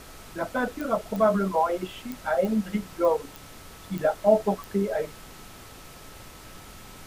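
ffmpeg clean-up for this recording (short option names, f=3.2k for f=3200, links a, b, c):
-af "adeclick=t=4,bandreject=f=1.3k:w=30,afftdn=nr=25:nf=-46"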